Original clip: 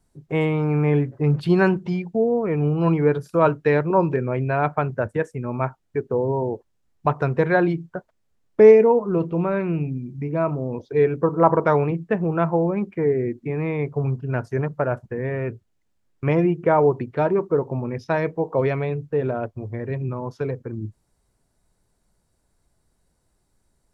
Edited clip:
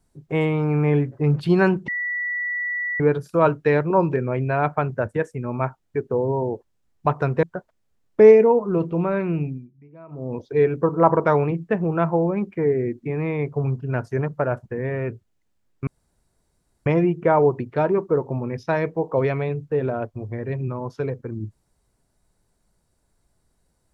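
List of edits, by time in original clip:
1.88–3.00 s: bleep 1.95 kHz -23 dBFS
7.43–7.83 s: delete
9.85–10.73 s: dip -21.5 dB, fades 0.25 s
16.27 s: insert room tone 0.99 s

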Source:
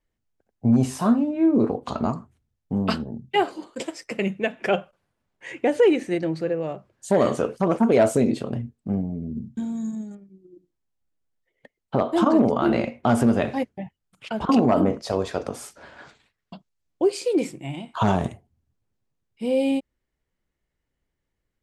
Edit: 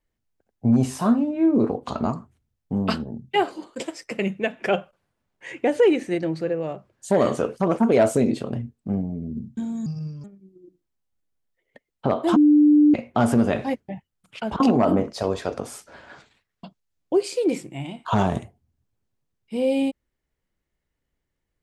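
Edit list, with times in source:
9.86–10.13 s: speed 71%
12.25–12.83 s: bleep 297 Hz -11 dBFS

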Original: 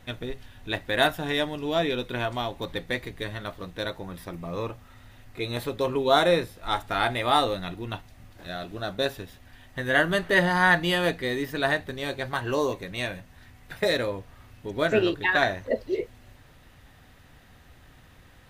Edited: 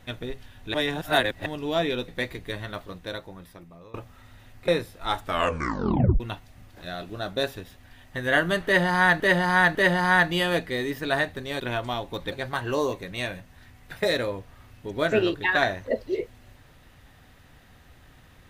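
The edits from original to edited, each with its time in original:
0.74–1.46 s: reverse
2.08–2.80 s: move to 12.12 s
3.45–4.66 s: fade out, to -22 dB
5.40–6.30 s: delete
6.85 s: tape stop 0.97 s
10.27–10.82 s: loop, 3 plays

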